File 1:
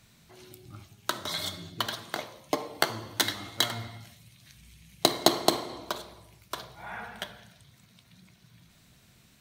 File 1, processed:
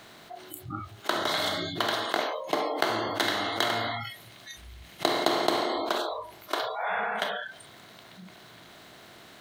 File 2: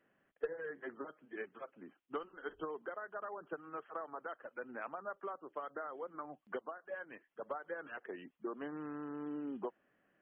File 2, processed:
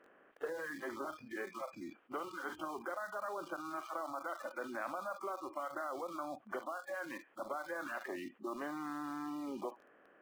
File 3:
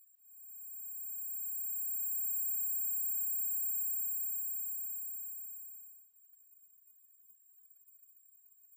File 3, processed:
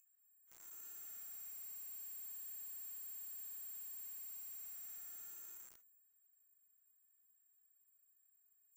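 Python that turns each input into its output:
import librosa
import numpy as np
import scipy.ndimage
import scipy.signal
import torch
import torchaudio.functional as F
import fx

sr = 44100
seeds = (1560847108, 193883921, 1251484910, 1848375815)

p1 = fx.bin_compress(x, sr, power=0.6)
p2 = fx.bass_treble(p1, sr, bass_db=-9, treble_db=-11)
p3 = fx.echo_banded(p2, sr, ms=68, feedback_pct=62, hz=2800.0, wet_db=-15)
p4 = fx.quant_dither(p3, sr, seeds[0], bits=8, dither='none')
p5 = p3 + F.gain(torch.from_numpy(p4), -6.0).numpy()
p6 = fx.noise_reduce_blind(p5, sr, reduce_db=28)
p7 = fx.env_flatten(p6, sr, amount_pct=50)
y = F.gain(torch.from_numpy(p7), -7.5).numpy()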